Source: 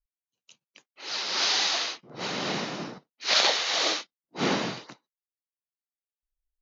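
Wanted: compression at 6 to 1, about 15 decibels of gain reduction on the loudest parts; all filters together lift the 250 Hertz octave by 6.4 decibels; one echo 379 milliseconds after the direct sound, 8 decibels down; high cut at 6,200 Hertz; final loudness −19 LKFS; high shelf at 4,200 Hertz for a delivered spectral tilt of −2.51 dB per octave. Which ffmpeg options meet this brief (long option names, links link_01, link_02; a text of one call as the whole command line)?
ffmpeg -i in.wav -af "lowpass=6200,equalizer=frequency=250:width_type=o:gain=8,highshelf=frequency=4200:gain=4,acompressor=threshold=-34dB:ratio=6,aecho=1:1:379:0.398,volume=17dB" out.wav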